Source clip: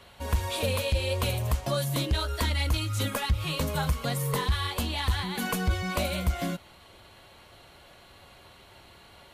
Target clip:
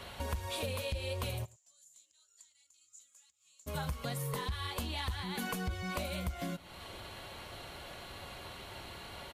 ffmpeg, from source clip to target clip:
ffmpeg -i in.wav -filter_complex "[0:a]acompressor=threshold=-43dB:ratio=4,asplit=3[link_01][link_02][link_03];[link_01]afade=type=out:start_time=1.44:duration=0.02[link_04];[link_02]bandpass=frequency=7100:width_type=q:width=14:csg=0,afade=type=in:start_time=1.44:duration=0.02,afade=type=out:start_time=3.66:duration=0.02[link_05];[link_03]afade=type=in:start_time=3.66:duration=0.02[link_06];[link_04][link_05][link_06]amix=inputs=3:normalize=0,asplit=2[link_07][link_08];[link_08]adelay=105,volume=-24dB,highshelf=frequency=4000:gain=-2.36[link_09];[link_07][link_09]amix=inputs=2:normalize=0,volume=5.5dB" out.wav

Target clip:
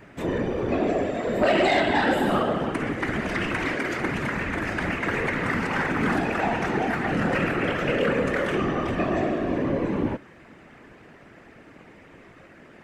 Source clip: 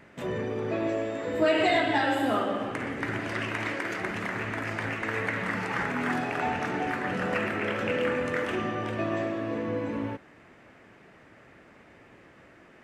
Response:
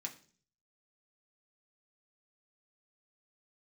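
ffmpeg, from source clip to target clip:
-af "equalizer=frequency=230:width=1.2:gain=4,afftfilt=real='hypot(re,im)*cos(2*PI*random(0))':imag='hypot(re,im)*sin(2*PI*random(1))':win_size=512:overlap=0.75,aeval=exprs='0.2*sin(PI/2*2*val(0)/0.2)':channel_layout=same"

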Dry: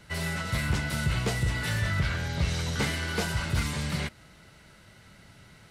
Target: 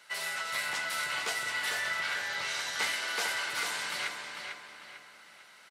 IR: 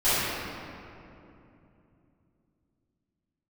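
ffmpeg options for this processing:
-filter_complex "[0:a]highpass=850,asplit=2[link_01][link_02];[link_02]adelay=448,lowpass=frequency=4500:poles=1,volume=-4.5dB,asplit=2[link_03][link_04];[link_04]adelay=448,lowpass=frequency=4500:poles=1,volume=0.41,asplit=2[link_05][link_06];[link_06]adelay=448,lowpass=frequency=4500:poles=1,volume=0.41,asplit=2[link_07][link_08];[link_08]adelay=448,lowpass=frequency=4500:poles=1,volume=0.41,asplit=2[link_09][link_10];[link_10]adelay=448,lowpass=frequency=4500:poles=1,volume=0.41[link_11];[link_01][link_03][link_05][link_07][link_09][link_11]amix=inputs=6:normalize=0,asplit=2[link_12][link_13];[1:a]atrim=start_sample=2205[link_14];[link_13][link_14]afir=irnorm=-1:irlink=0,volume=-28.5dB[link_15];[link_12][link_15]amix=inputs=2:normalize=0"

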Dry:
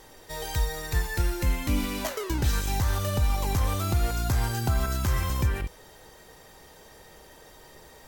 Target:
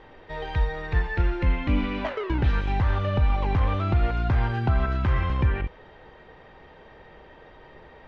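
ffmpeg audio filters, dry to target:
ffmpeg -i in.wav -af "lowpass=frequency=2900:width=0.5412,lowpass=frequency=2900:width=1.3066,volume=3dB" out.wav

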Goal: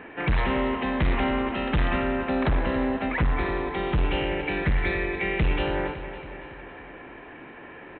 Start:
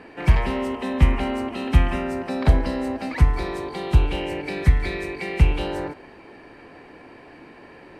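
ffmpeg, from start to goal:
ffmpeg -i in.wav -af "equalizer=frequency=1600:width=1.2:gain=5,aresample=8000,asoftclip=type=hard:threshold=-19dB,aresample=44100,aecho=1:1:278|556|834|1112|1390|1668:0.251|0.146|0.0845|0.049|0.0284|0.0165" out.wav

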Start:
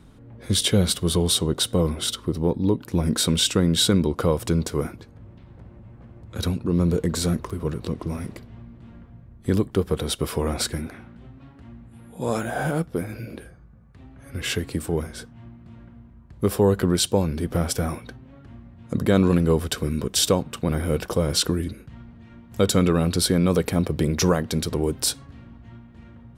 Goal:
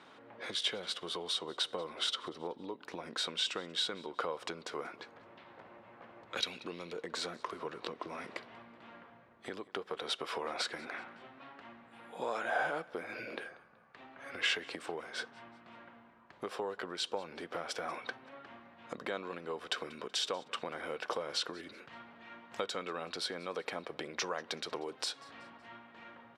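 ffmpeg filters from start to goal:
ffmpeg -i in.wav -filter_complex "[0:a]asettb=1/sr,asplit=3[link_01][link_02][link_03];[link_01]atrim=end=6.374[link_04];[link_02]atrim=start=6.37:end=6.93,asetpts=PTS-STARTPTS,afade=type=in:duration=0.004:curve=qsin,afade=type=out:start_time=0.556:duration=0.004:curve=qsin,highshelf=frequency=1800:width_type=q:width=1.5:gain=9[link_05];[link_03]atrim=start=6.926[link_06];[link_04][link_05]acrossfade=duration=0.004:curve1=hsin:curve2=qsin[link_07];[link_07][link_06]acrossfade=duration=0.004:curve1=qsin:curve2=hsin,acompressor=threshold=-31dB:ratio=12,highpass=690,lowpass=3700,aecho=1:1:188|376|564:0.0708|0.0297|0.0125,volume=6dB" out.wav

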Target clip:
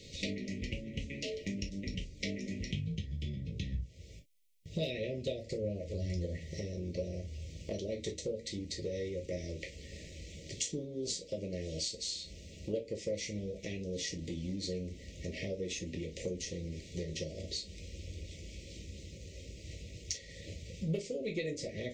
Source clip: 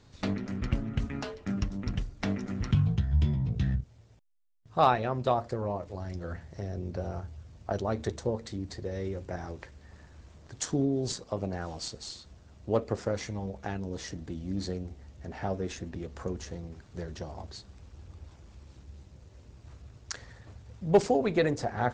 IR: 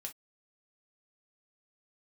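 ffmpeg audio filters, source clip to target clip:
-filter_complex "[0:a]asuperstop=centerf=1100:order=20:qfactor=0.81,lowshelf=frequency=390:gain=-9.5,acompressor=threshold=-50dB:ratio=4,asettb=1/sr,asplit=3[link_01][link_02][link_03];[link_01]atrim=end=3.724[link_04];[link_02]atrim=start=3.72:end=6.26,asetpts=PTS-STARTPTS,afade=type=in:duration=0.004:curve=qsin,afade=type=out:start_time=2.536:duration=0.004:curve=qsin,equalizer=frequency=63:width_type=o:width=2.1:gain=7.5[link_05];[link_03]atrim=start=6.256[link_06];[link_04][link_05]acrossfade=duration=0.004:curve1=hsin:curve2=qsin[link_07];[link_07][link_06]acrossfade=duration=0.004:curve1=qsin:curve2=hsin[link_08];[1:a]atrim=start_sample=2205[link_09];[link_08][link_09]afir=irnorm=-1:irlink=0,volume=16.5dB"

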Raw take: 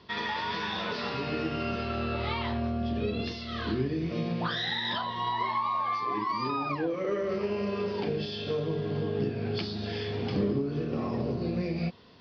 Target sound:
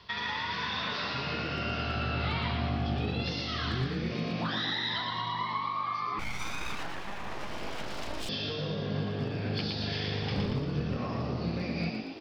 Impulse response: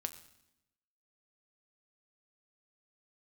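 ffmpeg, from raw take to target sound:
-filter_complex "[0:a]acrossover=split=350[link_01][link_02];[link_02]acompressor=threshold=-36dB:ratio=4[link_03];[link_01][link_03]amix=inputs=2:normalize=0,volume=22.5dB,asoftclip=hard,volume=-22.5dB,equalizer=frequency=300:width_type=o:width=1.9:gain=-13.5,asplit=9[link_04][link_05][link_06][link_07][link_08][link_09][link_10][link_11][link_12];[link_05]adelay=116,afreqshift=50,volume=-4dB[link_13];[link_06]adelay=232,afreqshift=100,volume=-8.7dB[link_14];[link_07]adelay=348,afreqshift=150,volume=-13.5dB[link_15];[link_08]adelay=464,afreqshift=200,volume=-18.2dB[link_16];[link_09]adelay=580,afreqshift=250,volume=-22.9dB[link_17];[link_10]adelay=696,afreqshift=300,volume=-27.7dB[link_18];[link_11]adelay=812,afreqshift=350,volume=-32.4dB[link_19];[link_12]adelay=928,afreqshift=400,volume=-37.1dB[link_20];[link_04][link_13][link_14][link_15][link_16][link_17][link_18][link_19][link_20]amix=inputs=9:normalize=0,asettb=1/sr,asplit=3[link_21][link_22][link_23];[link_21]atrim=end=6.194[link_24];[link_22]atrim=start=6.19:end=8.29,asetpts=PTS-STARTPTS,afade=type=in:duration=0.004:curve=qsin,afade=type=out:start_time=2.096:duration=0.004:curve=qsin,aeval=exprs='abs(val(0))':channel_layout=same[link_25];[link_23]atrim=start=8.286[link_26];[link_24][link_25]acrossfade=duration=0.004:curve1=hsin:curve2=qsin[link_27];[link_27][link_26]acrossfade=duration=0.004:curve1=qsin:curve2=hsin,asettb=1/sr,asplit=3[link_28][link_29][link_30];[link_28]atrim=end=10.224[link_31];[link_29]atrim=start=10.22:end=10.96,asetpts=PTS-STARTPTS,afade=type=in:duration=0.004:curve=qsin,afade=type=out:start_time=0.736:duration=0.004:curve=qsin,asubboost=boost=10.5:cutoff=150[link_32];[link_30]atrim=start=10.956[link_33];[link_31][link_32]acrossfade=duration=0.004:curve1=hsin:curve2=qsin[link_34];[link_34][link_33]acrossfade=duration=0.004:curve1=qsin:curve2=hsin,volume=4.5dB"

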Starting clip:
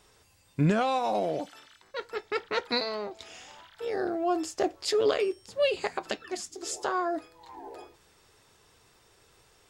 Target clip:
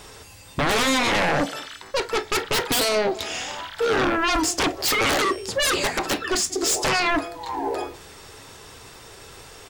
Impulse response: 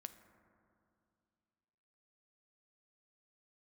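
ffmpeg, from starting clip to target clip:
-filter_complex "[0:a]asplit=2[link_01][link_02];[link_02]adelay=186.6,volume=-27dB,highshelf=frequency=4000:gain=-4.2[link_03];[link_01][link_03]amix=inputs=2:normalize=0,aeval=exprs='0.188*sin(PI/2*7.08*val(0)/0.188)':channel_layout=same[link_04];[1:a]atrim=start_sample=2205,atrim=end_sample=3087,asetrate=57330,aresample=44100[link_05];[link_04][link_05]afir=irnorm=-1:irlink=0,volume=5dB"

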